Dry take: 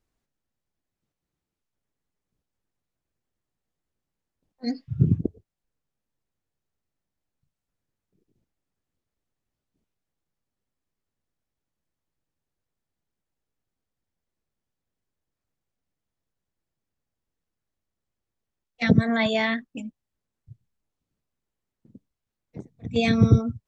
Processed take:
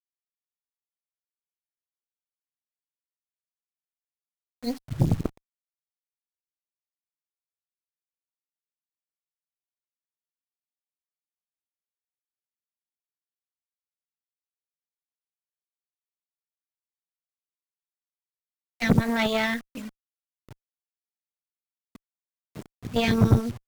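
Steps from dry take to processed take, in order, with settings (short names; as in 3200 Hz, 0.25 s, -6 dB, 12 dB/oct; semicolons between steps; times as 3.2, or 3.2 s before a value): bit-crush 7-bit; added harmonics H 8 -18 dB, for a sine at -4.5 dBFS; gain -2.5 dB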